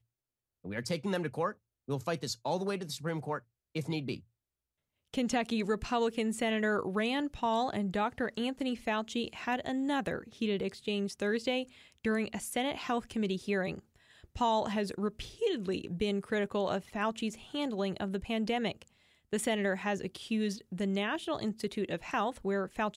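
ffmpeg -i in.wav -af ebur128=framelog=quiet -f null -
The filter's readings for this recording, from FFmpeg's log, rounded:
Integrated loudness:
  I:         -33.9 LUFS
  Threshold: -44.1 LUFS
Loudness range:
  LRA:         4.1 LU
  Threshold: -54.1 LUFS
  LRA low:   -36.3 LUFS
  LRA high:  -32.2 LUFS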